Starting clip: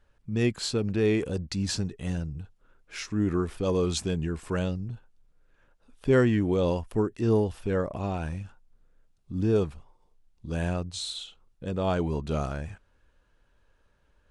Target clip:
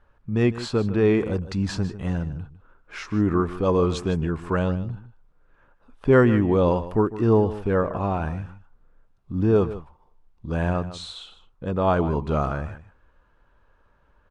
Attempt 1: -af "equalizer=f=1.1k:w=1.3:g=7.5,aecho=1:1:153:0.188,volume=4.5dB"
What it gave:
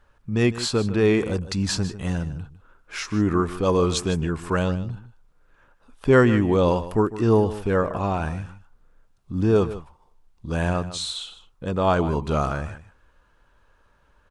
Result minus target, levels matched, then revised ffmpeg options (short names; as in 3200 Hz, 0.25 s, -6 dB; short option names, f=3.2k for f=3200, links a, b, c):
2000 Hz band +2.5 dB
-af "lowpass=f=1.8k:p=1,equalizer=f=1.1k:w=1.3:g=7.5,aecho=1:1:153:0.188,volume=4.5dB"